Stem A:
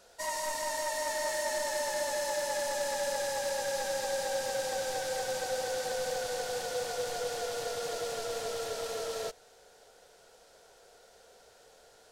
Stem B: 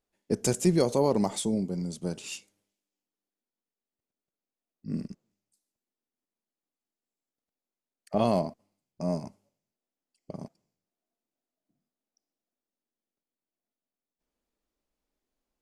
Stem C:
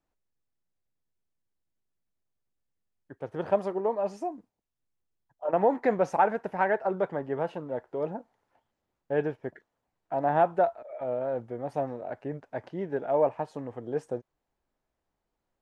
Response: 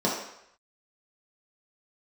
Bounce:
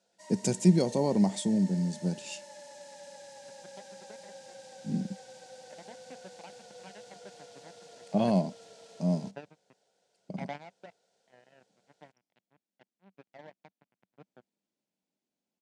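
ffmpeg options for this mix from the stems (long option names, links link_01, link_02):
-filter_complex "[0:a]volume=-15dB[link_01];[1:a]volume=-2.5dB,asplit=2[link_02][link_03];[2:a]acompressor=threshold=-25dB:ratio=5,acrusher=bits=3:mix=0:aa=0.5,adelay=250,volume=-8.5dB[link_04];[link_03]apad=whole_len=699505[link_05];[link_04][link_05]sidechaingate=range=-12dB:threshold=-55dB:ratio=16:detection=peak[link_06];[link_01][link_02][link_06]amix=inputs=3:normalize=0,highpass=frequency=110:width=0.5412,highpass=frequency=110:width=1.3066,equalizer=frequency=190:width_type=q:width=4:gain=9,equalizer=frequency=440:width_type=q:width=4:gain=-3,equalizer=frequency=1200:width_type=q:width=4:gain=-10,equalizer=frequency=1800:width_type=q:width=4:gain=-3,lowpass=frequency=9100:width=0.5412,lowpass=frequency=9100:width=1.3066"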